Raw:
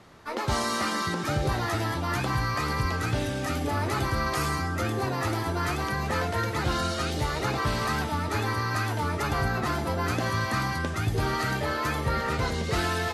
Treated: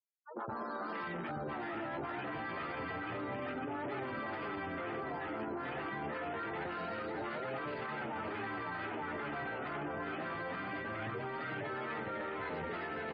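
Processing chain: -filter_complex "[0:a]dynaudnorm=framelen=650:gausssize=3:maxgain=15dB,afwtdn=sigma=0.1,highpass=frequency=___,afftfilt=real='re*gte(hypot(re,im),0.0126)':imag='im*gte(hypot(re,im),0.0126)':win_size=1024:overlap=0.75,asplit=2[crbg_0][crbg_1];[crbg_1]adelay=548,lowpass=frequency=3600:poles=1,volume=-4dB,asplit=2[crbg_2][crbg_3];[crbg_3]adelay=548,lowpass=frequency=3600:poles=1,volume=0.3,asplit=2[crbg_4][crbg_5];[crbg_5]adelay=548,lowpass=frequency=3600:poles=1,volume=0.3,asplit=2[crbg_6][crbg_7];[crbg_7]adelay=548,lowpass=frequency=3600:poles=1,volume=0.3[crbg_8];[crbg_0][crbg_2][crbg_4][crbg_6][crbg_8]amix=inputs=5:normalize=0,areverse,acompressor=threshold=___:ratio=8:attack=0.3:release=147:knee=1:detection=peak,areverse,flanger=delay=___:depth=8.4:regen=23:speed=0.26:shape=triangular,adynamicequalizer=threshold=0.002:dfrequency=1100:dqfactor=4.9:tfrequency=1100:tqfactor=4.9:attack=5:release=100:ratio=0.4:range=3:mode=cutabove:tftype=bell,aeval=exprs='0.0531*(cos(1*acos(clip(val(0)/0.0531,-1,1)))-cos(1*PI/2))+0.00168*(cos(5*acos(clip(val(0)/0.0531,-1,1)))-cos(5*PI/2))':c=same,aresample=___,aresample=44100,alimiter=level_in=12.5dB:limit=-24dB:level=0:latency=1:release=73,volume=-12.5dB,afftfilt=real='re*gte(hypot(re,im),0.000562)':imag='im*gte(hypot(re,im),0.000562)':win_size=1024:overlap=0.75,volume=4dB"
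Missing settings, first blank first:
250, -28dB, 6.8, 11025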